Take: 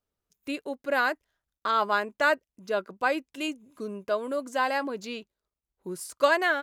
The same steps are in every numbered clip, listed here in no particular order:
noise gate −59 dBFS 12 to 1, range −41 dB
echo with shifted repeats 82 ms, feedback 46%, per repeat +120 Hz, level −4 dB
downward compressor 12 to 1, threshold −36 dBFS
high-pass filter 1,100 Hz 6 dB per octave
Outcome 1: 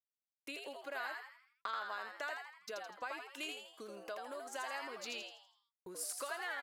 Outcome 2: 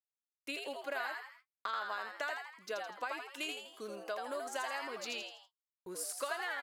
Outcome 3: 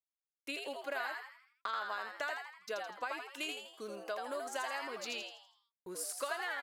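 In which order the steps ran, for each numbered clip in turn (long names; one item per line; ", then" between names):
downward compressor, then high-pass filter, then noise gate, then echo with shifted repeats
high-pass filter, then downward compressor, then echo with shifted repeats, then noise gate
high-pass filter, then downward compressor, then noise gate, then echo with shifted repeats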